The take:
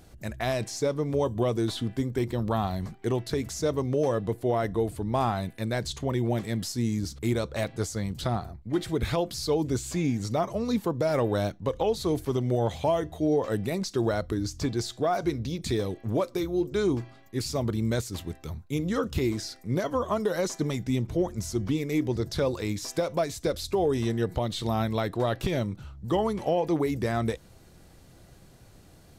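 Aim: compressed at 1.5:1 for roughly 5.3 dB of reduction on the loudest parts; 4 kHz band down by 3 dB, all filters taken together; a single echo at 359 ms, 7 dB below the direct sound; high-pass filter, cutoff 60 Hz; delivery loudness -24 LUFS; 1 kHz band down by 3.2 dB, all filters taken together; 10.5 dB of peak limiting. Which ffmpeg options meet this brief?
-af "highpass=60,equalizer=f=1000:t=o:g=-4.5,equalizer=f=4000:t=o:g=-3.5,acompressor=threshold=0.0141:ratio=1.5,alimiter=level_in=2:limit=0.0631:level=0:latency=1,volume=0.501,aecho=1:1:359:0.447,volume=5.31"

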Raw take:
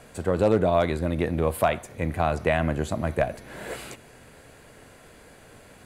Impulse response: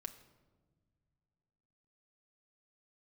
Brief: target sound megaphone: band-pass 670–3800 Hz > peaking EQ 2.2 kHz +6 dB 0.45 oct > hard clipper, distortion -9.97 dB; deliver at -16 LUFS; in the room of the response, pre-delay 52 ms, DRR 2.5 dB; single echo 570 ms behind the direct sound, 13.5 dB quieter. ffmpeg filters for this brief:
-filter_complex "[0:a]aecho=1:1:570:0.211,asplit=2[s0][s1];[1:a]atrim=start_sample=2205,adelay=52[s2];[s1][s2]afir=irnorm=-1:irlink=0,volume=1.19[s3];[s0][s3]amix=inputs=2:normalize=0,highpass=670,lowpass=3800,equalizer=f=2200:t=o:w=0.45:g=6,asoftclip=type=hard:threshold=0.075,volume=5.01"

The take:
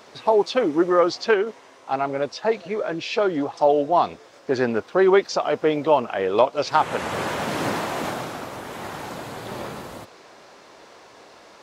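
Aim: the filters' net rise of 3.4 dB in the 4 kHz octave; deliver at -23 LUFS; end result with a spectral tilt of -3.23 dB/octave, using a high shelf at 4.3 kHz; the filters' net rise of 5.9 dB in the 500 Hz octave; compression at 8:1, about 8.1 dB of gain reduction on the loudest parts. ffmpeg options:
-af "equalizer=f=500:t=o:g=7.5,equalizer=f=4000:t=o:g=8.5,highshelf=f=4300:g=-8,acompressor=threshold=0.178:ratio=8,volume=0.944"

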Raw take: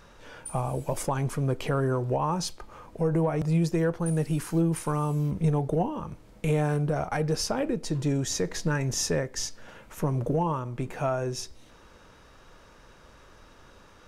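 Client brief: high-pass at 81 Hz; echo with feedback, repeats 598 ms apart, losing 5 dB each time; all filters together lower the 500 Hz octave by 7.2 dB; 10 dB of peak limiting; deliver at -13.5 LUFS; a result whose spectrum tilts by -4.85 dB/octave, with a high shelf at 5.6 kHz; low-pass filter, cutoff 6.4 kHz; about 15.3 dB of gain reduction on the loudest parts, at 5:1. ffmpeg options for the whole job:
-af "highpass=81,lowpass=6400,equalizer=f=500:t=o:g=-9,highshelf=f=5600:g=7,acompressor=threshold=0.01:ratio=5,alimiter=level_in=3.35:limit=0.0631:level=0:latency=1,volume=0.299,aecho=1:1:598|1196|1794|2392|2990|3588|4186:0.562|0.315|0.176|0.0988|0.0553|0.031|0.0173,volume=28.2"

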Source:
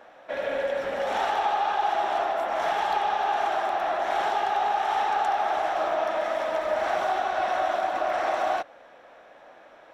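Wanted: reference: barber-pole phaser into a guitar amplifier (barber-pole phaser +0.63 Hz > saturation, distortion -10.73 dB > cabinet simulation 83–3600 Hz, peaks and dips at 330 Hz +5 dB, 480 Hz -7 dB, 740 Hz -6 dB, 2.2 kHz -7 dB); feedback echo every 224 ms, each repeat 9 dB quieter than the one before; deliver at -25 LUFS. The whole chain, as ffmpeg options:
-filter_complex "[0:a]aecho=1:1:224|448|672|896:0.355|0.124|0.0435|0.0152,asplit=2[s0][s1];[s1]afreqshift=0.63[s2];[s0][s2]amix=inputs=2:normalize=1,asoftclip=threshold=0.0447,highpass=83,equalizer=f=330:t=q:w=4:g=5,equalizer=f=480:t=q:w=4:g=-7,equalizer=f=740:t=q:w=4:g=-6,equalizer=f=2200:t=q:w=4:g=-7,lowpass=f=3600:w=0.5412,lowpass=f=3600:w=1.3066,volume=3.35"

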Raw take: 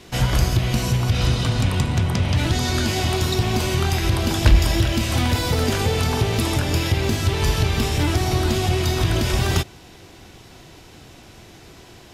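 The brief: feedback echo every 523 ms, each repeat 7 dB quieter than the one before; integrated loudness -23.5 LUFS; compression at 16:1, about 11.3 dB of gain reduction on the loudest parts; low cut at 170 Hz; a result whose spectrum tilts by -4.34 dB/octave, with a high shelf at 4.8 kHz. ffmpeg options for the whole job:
-af "highpass=170,highshelf=f=4800:g=-4,acompressor=threshold=0.0316:ratio=16,aecho=1:1:523|1046|1569|2092|2615:0.447|0.201|0.0905|0.0407|0.0183,volume=2.99"

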